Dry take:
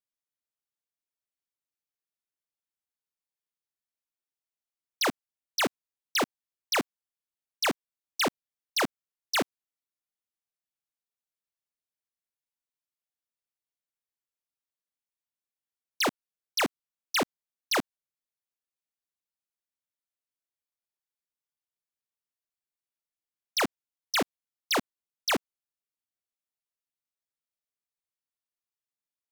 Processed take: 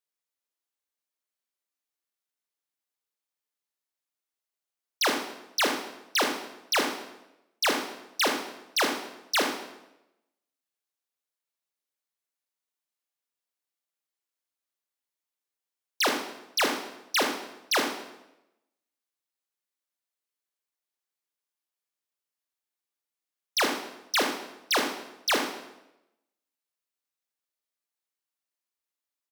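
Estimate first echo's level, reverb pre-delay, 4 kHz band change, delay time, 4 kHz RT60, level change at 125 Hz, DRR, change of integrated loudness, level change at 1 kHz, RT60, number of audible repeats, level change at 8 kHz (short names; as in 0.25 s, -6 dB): -10.0 dB, 22 ms, +3.5 dB, 75 ms, 0.75 s, -7.0 dB, 3.0 dB, +2.0 dB, +3.0 dB, 0.90 s, 1, +3.0 dB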